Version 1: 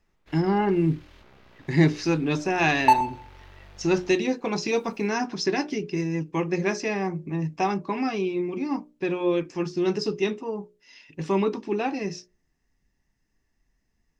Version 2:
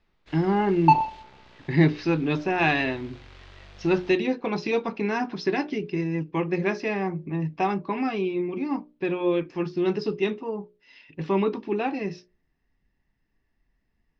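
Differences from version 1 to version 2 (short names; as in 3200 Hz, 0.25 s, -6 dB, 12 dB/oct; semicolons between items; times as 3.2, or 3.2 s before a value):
first sound: remove air absorption 270 m; second sound: entry -2.00 s; master: add LPF 4200 Hz 24 dB/oct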